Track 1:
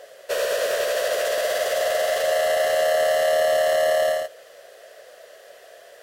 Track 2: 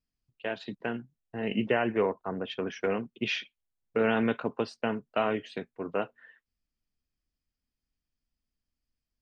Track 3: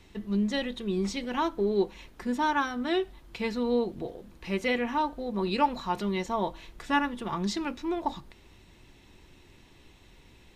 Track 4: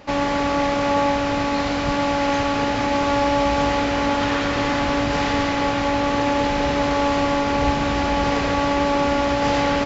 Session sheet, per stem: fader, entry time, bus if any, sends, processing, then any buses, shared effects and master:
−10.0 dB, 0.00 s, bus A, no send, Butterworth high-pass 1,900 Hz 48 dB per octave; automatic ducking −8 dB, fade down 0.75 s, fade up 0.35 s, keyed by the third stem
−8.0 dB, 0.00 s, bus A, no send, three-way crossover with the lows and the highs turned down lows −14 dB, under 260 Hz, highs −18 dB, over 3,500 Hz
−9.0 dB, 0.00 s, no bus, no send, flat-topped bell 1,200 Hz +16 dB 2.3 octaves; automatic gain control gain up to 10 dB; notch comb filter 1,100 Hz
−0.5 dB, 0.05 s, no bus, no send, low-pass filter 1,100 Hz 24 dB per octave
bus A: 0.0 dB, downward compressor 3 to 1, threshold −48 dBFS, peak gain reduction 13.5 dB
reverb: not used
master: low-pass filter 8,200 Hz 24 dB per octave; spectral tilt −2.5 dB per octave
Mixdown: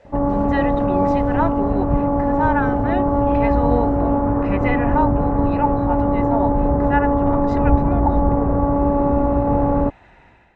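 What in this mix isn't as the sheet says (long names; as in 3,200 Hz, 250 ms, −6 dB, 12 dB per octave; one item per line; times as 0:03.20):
stem 1: missing Butterworth high-pass 1,900 Hz 48 dB per octave
stem 2 −8.0 dB → −0.5 dB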